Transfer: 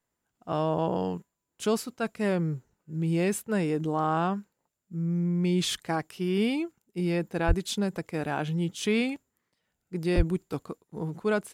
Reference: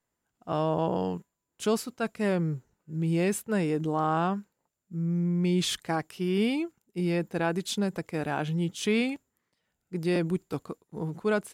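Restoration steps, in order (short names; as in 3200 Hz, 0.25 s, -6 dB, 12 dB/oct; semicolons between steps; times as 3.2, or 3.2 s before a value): 7.47–7.59 HPF 140 Hz 24 dB/oct; 10.16–10.28 HPF 140 Hz 24 dB/oct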